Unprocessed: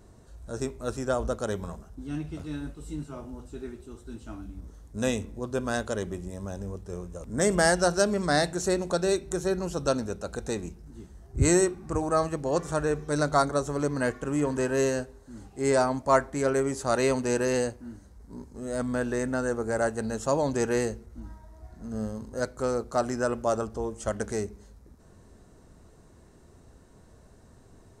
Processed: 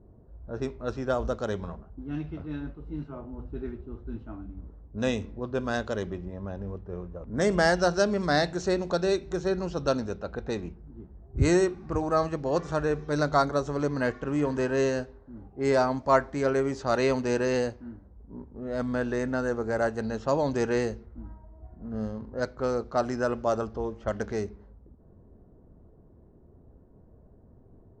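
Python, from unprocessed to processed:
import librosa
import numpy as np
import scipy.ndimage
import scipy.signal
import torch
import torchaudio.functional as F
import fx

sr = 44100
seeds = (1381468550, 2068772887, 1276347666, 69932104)

y = fx.low_shelf(x, sr, hz=230.0, db=7.0, at=(3.38, 4.23))
y = fx.env_lowpass(y, sr, base_hz=530.0, full_db=-24.5)
y = scipy.signal.sosfilt(scipy.signal.butter(4, 5600.0, 'lowpass', fs=sr, output='sos'), y)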